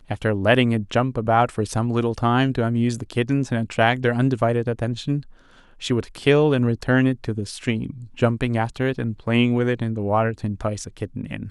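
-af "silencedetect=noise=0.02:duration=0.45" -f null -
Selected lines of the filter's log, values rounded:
silence_start: 5.21
silence_end: 5.82 | silence_duration: 0.61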